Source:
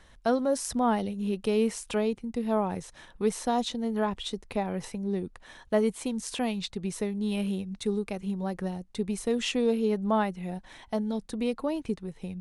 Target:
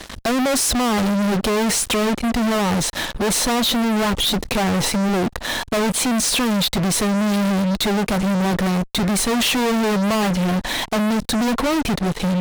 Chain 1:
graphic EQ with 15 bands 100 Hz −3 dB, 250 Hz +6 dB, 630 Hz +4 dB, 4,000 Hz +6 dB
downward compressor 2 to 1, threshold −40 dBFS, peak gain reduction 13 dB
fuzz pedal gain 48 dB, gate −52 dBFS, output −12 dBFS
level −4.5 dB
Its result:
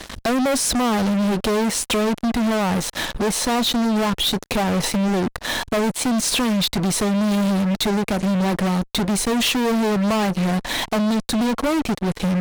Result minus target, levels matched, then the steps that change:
downward compressor: peak gain reduction +13 dB
remove: downward compressor 2 to 1, threshold −40 dBFS, peak gain reduction 13 dB

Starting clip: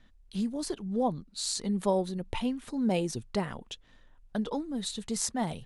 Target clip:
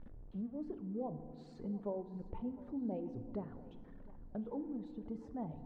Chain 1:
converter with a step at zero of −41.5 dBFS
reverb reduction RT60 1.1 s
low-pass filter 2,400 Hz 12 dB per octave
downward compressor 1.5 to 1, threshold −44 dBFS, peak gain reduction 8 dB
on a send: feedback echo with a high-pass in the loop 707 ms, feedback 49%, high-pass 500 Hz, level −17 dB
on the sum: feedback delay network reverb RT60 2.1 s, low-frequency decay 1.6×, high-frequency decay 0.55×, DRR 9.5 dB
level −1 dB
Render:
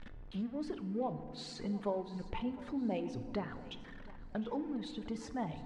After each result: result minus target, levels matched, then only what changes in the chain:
2,000 Hz band +15.0 dB; downward compressor: peak gain reduction −2.5 dB
change: low-pass filter 670 Hz 12 dB per octave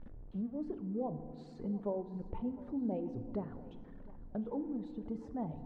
downward compressor: peak gain reduction −3.5 dB
change: downward compressor 1.5 to 1, threshold −54 dBFS, peak gain reduction 11 dB

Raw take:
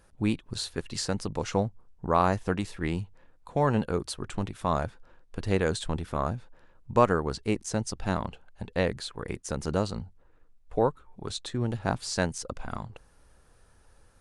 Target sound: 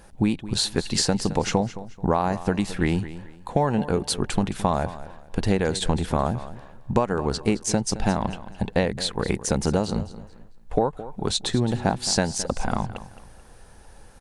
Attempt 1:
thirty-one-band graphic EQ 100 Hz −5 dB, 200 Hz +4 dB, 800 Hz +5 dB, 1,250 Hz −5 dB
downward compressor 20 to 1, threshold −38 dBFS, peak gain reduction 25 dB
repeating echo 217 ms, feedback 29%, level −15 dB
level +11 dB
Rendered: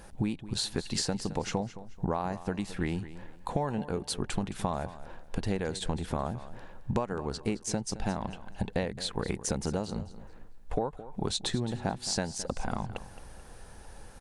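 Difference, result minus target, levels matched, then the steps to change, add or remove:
downward compressor: peak gain reduction +9.5 dB
change: downward compressor 20 to 1, threshold −28 dBFS, peak gain reduction 15.5 dB

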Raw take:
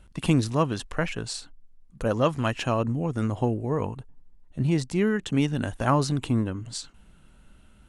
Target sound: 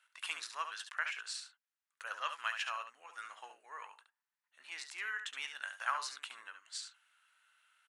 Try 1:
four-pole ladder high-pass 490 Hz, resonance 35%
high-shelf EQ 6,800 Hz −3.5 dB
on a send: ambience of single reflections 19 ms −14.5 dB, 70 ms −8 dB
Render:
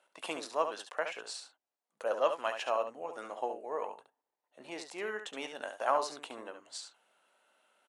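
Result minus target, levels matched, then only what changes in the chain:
500 Hz band +19.5 dB
change: four-pole ladder high-pass 1,200 Hz, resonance 35%

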